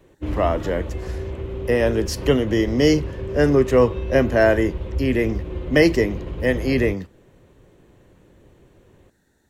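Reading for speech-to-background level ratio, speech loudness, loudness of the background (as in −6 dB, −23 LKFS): 9.5 dB, −20.5 LKFS, −30.0 LKFS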